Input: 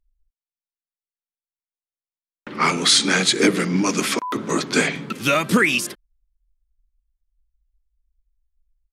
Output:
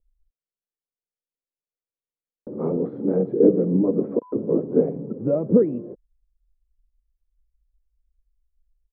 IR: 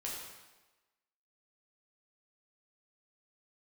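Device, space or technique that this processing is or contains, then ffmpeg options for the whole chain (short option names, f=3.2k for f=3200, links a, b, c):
under water: -af "lowpass=f=570:w=0.5412,lowpass=f=570:w=1.3066,equalizer=f=490:t=o:w=0.46:g=8.5"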